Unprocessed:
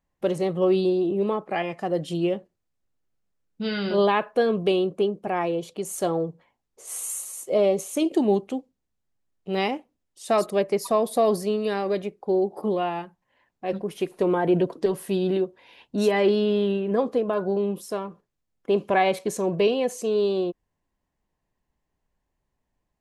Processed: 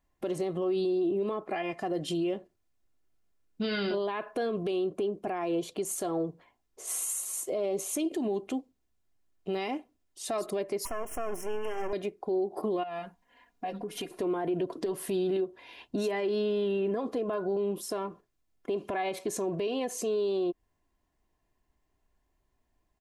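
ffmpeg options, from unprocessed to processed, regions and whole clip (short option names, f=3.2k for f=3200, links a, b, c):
-filter_complex "[0:a]asettb=1/sr,asplit=3[a][b][c];[a]atrim=end=10.854[d];[b]atrim=start=10.85:end=11.93,asetpts=PTS-STARTPTS,afade=t=in:d=0.004:c=qsin,afade=t=out:st=1.076:d=0.004:c=qsin,lowshelf=f=170:g=-12,aeval=exprs='max(val(0),0)':c=same,asuperstop=centerf=4100:order=20:qfactor=1.9[e];[c]atrim=start=11.926[f];[d][e]acrossfade=d=0.004:c1=hsin:c2=qsin[g];[g][f]acrossfade=d=0.004:c1=qsin:c2=hsin,asettb=1/sr,asplit=3[h][i][j];[h]atrim=end=12.834[k];[i]atrim=start=12.83:end=14.11,asetpts=PTS-STARTPTS,afade=t=in:d=0.004:c=qsin,afade=t=out:st=1.276:d=0.004:c=qsin,aecho=1:1:4.2:0.99,atrim=end_sample=56448,acompressor=threshold=-35dB:ratio=5:attack=3.2:release=140:knee=1:detection=peak[l];[j]atrim=start=14.106[m];[k][l]acrossfade=d=0.004:c1=hsin:c2=qsin[n];[n][m]acrossfade=d=0.004:c1=qsin:c2=hsin,acompressor=threshold=-21dB:ratio=6,aecho=1:1:2.9:0.39,alimiter=level_in=0.5dB:limit=-24dB:level=0:latency=1:release=149,volume=-0.5dB,volume=1.5dB"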